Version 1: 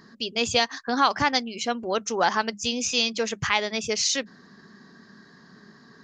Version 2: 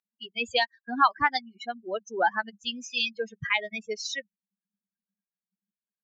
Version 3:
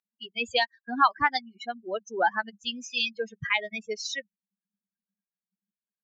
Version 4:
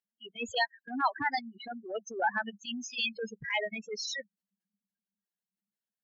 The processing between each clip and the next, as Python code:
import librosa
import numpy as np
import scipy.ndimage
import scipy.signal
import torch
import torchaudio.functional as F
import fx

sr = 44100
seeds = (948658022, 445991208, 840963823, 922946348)

y1 = fx.bin_expand(x, sr, power=3.0)
y1 = scipy.signal.sosfilt(scipy.signal.butter(2, 3000.0, 'lowpass', fs=sr, output='sos'), y1)
y1 = fx.low_shelf(y1, sr, hz=400.0, db=-12.0)
y1 = y1 * librosa.db_to_amplitude(5.5)
y2 = y1
y3 = fx.notch_comb(y2, sr, f0_hz=1200.0)
y3 = fx.spec_gate(y3, sr, threshold_db=-15, keep='strong')
y3 = fx.transient(y3, sr, attack_db=-10, sustain_db=4)